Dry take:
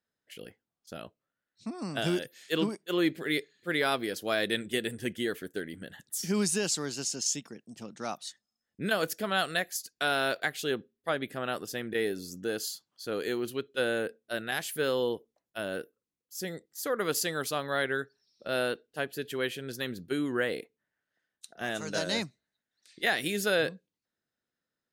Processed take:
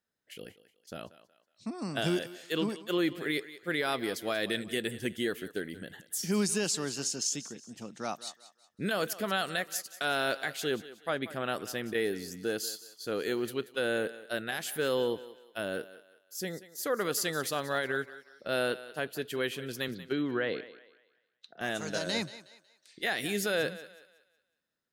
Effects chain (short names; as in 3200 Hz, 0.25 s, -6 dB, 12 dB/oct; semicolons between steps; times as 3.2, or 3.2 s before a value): 19.88–21.61 Chebyshev band-pass 110–4100 Hz, order 3; limiter -20 dBFS, peak gain reduction 5 dB; thinning echo 0.184 s, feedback 37%, high-pass 360 Hz, level -15 dB